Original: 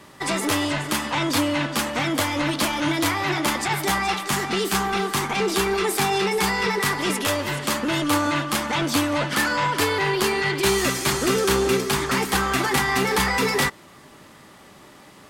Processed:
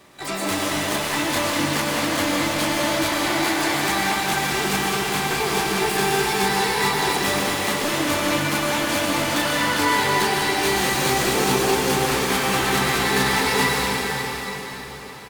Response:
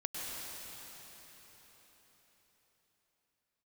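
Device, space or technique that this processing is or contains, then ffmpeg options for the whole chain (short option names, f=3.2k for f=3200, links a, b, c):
shimmer-style reverb: -filter_complex "[0:a]asplit=3[a][b][c];[a]afade=t=out:st=3.07:d=0.02[d];[b]highpass=f=220:w=0.5412,highpass=f=220:w=1.3066,afade=t=in:st=3.07:d=0.02,afade=t=out:st=3.73:d=0.02[e];[c]afade=t=in:st=3.73:d=0.02[f];[d][e][f]amix=inputs=3:normalize=0,aecho=1:1:501:0.0708,asplit=2[g][h];[h]asetrate=88200,aresample=44100,atempo=0.5,volume=-4dB[i];[g][i]amix=inputs=2:normalize=0[j];[1:a]atrim=start_sample=2205[k];[j][k]afir=irnorm=-1:irlink=0,volume=-2.5dB"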